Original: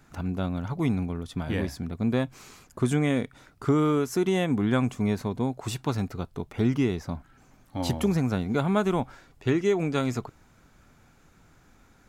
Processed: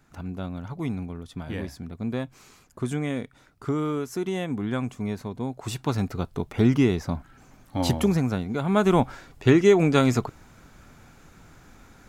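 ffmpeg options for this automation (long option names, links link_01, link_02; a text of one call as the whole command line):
ffmpeg -i in.wav -af "volume=14.5dB,afade=type=in:start_time=5.38:duration=0.9:silence=0.375837,afade=type=out:start_time=7.82:duration=0.77:silence=0.421697,afade=type=in:start_time=8.59:duration=0.4:silence=0.316228" out.wav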